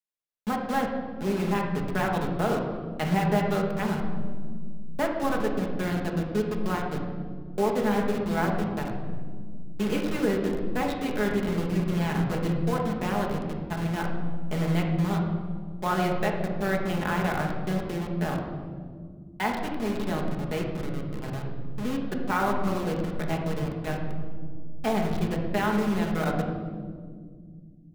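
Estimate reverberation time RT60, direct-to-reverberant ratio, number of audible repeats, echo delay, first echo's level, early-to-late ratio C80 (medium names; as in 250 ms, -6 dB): 2.0 s, -0.5 dB, no echo, no echo, no echo, 6.0 dB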